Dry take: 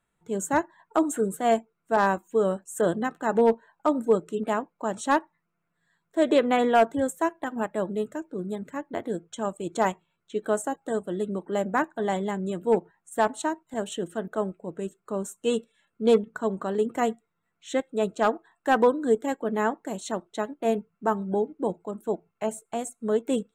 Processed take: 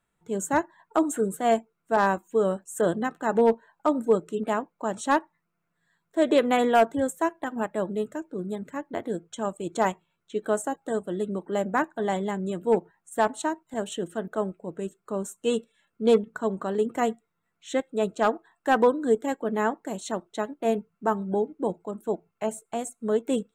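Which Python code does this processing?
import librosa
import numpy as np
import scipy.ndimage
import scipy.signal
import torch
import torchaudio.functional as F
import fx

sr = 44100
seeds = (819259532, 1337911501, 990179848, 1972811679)

y = fx.high_shelf(x, sr, hz=fx.line((6.37, 6200.0), (6.8, 11000.0)), db=10.5, at=(6.37, 6.8), fade=0.02)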